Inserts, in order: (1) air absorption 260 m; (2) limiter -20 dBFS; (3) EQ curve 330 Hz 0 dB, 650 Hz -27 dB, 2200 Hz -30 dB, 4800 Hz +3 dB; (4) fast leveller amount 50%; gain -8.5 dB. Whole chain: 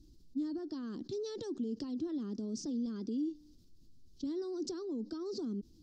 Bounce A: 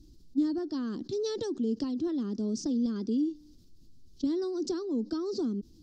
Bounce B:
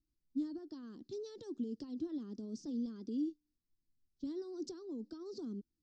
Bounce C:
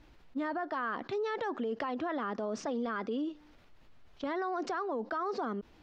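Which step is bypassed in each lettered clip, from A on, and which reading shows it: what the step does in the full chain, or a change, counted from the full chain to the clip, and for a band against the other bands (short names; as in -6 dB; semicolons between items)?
2, mean gain reduction 4.5 dB; 4, crest factor change +3.5 dB; 3, 1 kHz band +24.0 dB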